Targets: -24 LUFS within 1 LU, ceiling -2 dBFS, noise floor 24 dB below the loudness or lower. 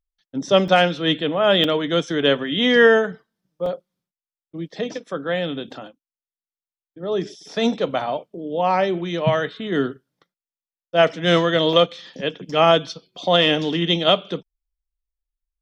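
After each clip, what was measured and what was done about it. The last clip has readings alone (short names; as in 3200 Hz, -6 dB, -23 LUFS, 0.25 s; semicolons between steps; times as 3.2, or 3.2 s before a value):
dropouts 4; longest dropout 2.8 ms; loudness -20.0 LUFS; peak -3.5 dBFS; loudness target -24.0 LUFS
-> interpolate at 0.68/1.64/3.66/11.73, 2.8 ms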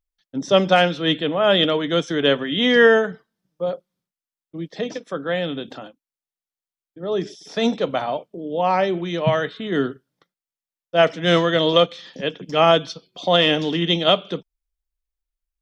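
dropouts 0; loudness -20.0 LUFS; peak -3.5 dBFS; loudness target -24.0 LUFS
-> gain -4 dB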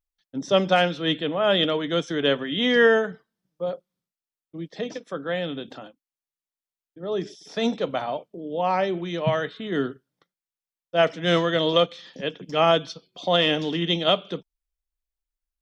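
loudness -24.0 LUFS; peak -7.5 dBFS; noise floor -94 dBFS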